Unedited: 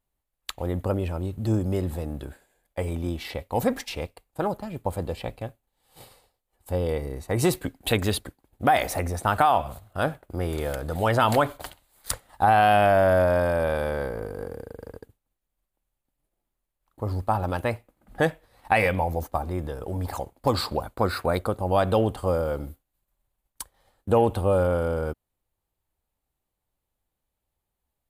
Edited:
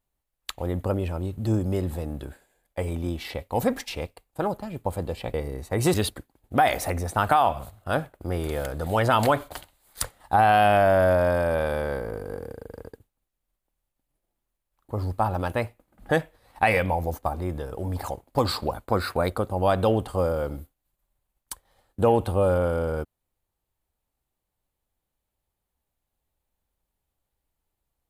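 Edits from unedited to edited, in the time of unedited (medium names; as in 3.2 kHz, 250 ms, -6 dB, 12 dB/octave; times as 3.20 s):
5.34–6.92 s: delete
7.52–8.03 s: delete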